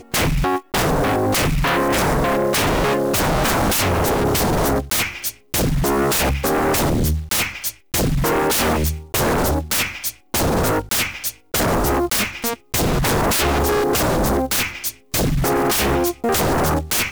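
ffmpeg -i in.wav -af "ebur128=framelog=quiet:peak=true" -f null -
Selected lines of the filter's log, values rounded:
Integrated loudness:
  I:         -18.9 LUFS
  Threshold: -28.8 LUFS
Loudness range:
  LRA:         1.9 LU
  Threshold: -38.9 LUFS
  LRA low:   -19.8 LUFS
  LRA high:  -17.9 LUFS
True peak:
  Peak:      -10.7 dBFS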